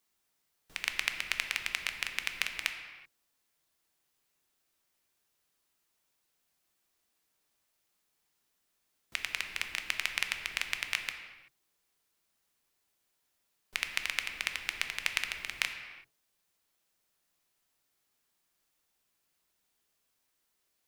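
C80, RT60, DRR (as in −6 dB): 8.5 dB, non-exponential decay, 5.5 dB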